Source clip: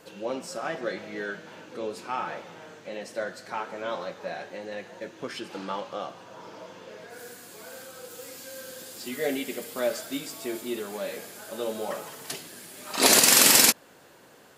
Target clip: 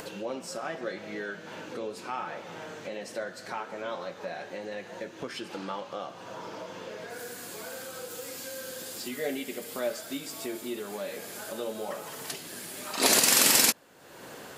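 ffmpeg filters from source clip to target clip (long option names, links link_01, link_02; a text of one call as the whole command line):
ffmpeg -i in.wav -af "acompressor=mode=upward:threshold=-27dB:ratio=2.5,volume=-4dB" out.wav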